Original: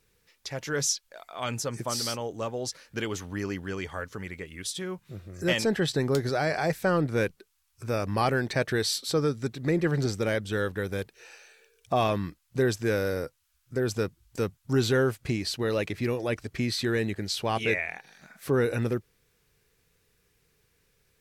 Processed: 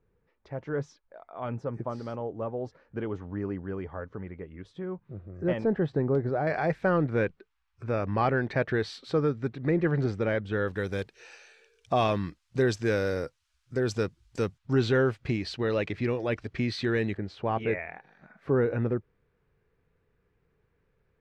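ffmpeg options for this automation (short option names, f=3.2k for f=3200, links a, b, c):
-af "asetnsamples=n=441:p=0,asendcmd='6.47 lowpass f 2200;10.68 lowpass f 6000;14.58 lowpass f 3400;17.17 lowpass f 1400',lowpass=1k"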